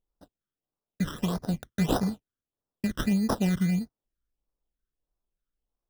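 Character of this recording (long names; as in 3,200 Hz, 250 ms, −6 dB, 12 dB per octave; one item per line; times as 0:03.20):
aliases and images of a low sample rate 2,200 Hz, jitter 0%
phaser sweep stages 12, 1.6 Hz, lowest notch 760–2,900 Hz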